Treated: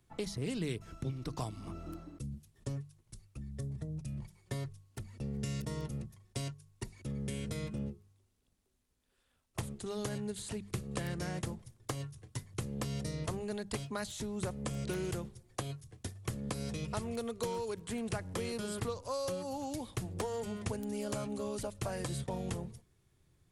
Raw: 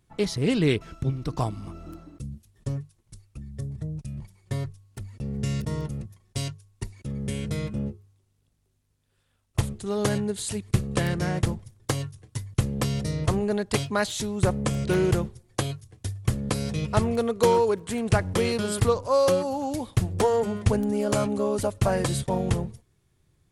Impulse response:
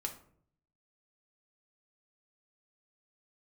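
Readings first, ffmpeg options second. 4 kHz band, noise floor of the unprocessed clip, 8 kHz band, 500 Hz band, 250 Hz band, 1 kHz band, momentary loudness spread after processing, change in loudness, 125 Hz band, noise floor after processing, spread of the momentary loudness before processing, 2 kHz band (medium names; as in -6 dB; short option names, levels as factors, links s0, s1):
-10.5 dB, -69 dBFS, -9.5 dB, -14.0 dB, -11.5 dB, -13.5 dB, 8 LU, -13.0 dB, -12.0 dB, -75 dBFS, 15 LU, -12.5 dB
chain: -filter_complex "[0:a]acrossover=split=140|2200|5800[s0][s1][s2][s3];[s0]acompressor=threshold=0.0112:ratio=4[s4];[s1]acompressor=threshold=0.0178:ratio=4[s5];[s2]acompressor=threshold=0.00355:ratio=4[s6];[s3]acompressor=threshold=0.00562:ratio=4[s7];[s4][s5][s6][s7]amix=inputs=4:normalize=0,bandreject=f=50:t=h:w=6,bandreject=f=100:t=h:w=6,bandreject=f=150:t=h:w=6,bandreject=f=200:t=h:w=6,volume=0.708"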